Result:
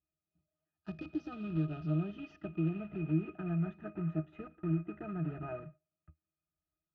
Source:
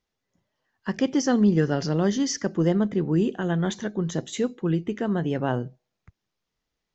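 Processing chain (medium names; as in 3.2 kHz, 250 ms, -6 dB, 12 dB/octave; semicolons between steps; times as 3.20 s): block-companded coder 3-bit; compression, threshold -23 dBFS, peak gain reduction 8.5 dB; pitch-class resonator D#, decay 0.12 s; low-pass sweep 5.3 kHz -> 1.9 kHz, 0.38–3.88 s; trim -1.5 dB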